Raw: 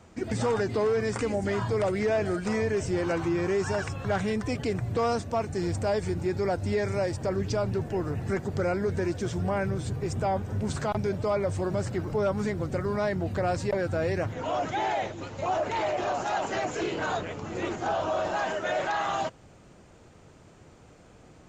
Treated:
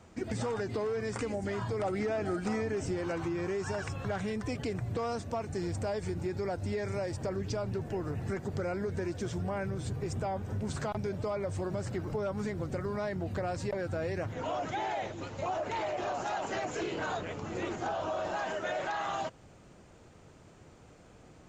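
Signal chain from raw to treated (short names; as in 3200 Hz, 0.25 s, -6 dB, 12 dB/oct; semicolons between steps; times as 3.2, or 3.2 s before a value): compressor, threshold -28 dBFS, peak gain reduction 6 dB; 1.79–2.93 small resonant body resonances 280/780/1300 Hz, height 9 dB; gain -2.5 dB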